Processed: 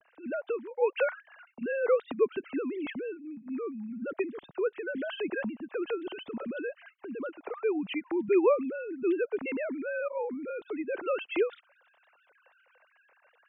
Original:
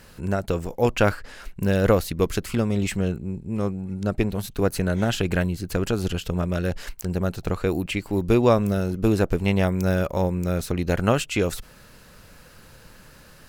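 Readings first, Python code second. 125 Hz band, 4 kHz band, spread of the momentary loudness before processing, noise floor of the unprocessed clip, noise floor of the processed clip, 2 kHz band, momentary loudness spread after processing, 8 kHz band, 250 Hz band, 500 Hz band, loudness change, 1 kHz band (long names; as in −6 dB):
below −30 dB, −12.5 dB, 8 LU, −49 dBFS, −68 dBFS, −6.0 dB, 12 LU, below −40 dB, −10.0 dB, −5.0 dB, −8.0 dB, −9.5 dB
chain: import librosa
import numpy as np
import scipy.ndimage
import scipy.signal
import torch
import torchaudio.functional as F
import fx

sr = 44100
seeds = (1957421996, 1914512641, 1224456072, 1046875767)

y = fx.sine_speech(x, sr)
y = y * 10.0 ** (-8.5 / 20.0)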